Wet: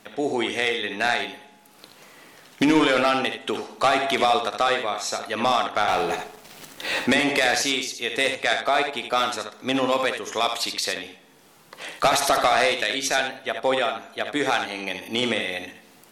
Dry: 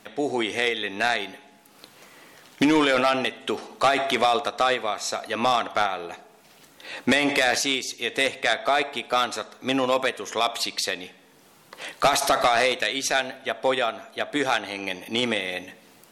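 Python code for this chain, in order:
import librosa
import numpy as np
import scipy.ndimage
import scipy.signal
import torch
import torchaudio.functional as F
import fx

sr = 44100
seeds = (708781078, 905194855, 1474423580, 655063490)

p1 = fx.leveller(x, sr, passes=3, at=(5.88, 7.04))
y = p1 + fx.room_early_taps(p1, sr, ms=(57, 76), db=(-13.5, -7.5), dry=0)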